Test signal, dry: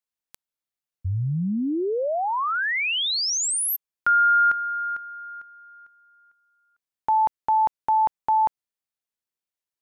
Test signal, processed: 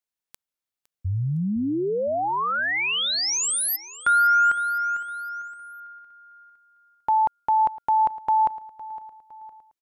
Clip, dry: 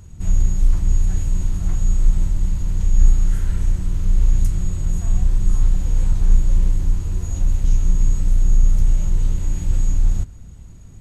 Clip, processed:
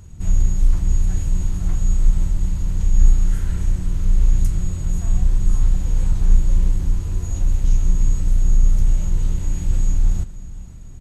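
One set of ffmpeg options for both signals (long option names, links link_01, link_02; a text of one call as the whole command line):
ffmpeg -i in.wav -af "aecho=1:1:510|1020|1530|2040:0.133|0.0613|0.0282|0.013" out.wav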